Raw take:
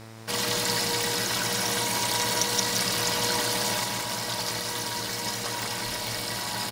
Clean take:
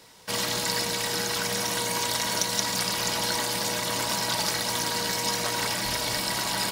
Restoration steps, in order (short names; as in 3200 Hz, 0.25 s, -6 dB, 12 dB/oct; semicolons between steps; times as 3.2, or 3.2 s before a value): de-click; de-hum 111.6 Hz, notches 23; inverse comb 0.173 s -5 dB; gain 0 dB, from 3.84 s +4.5 dB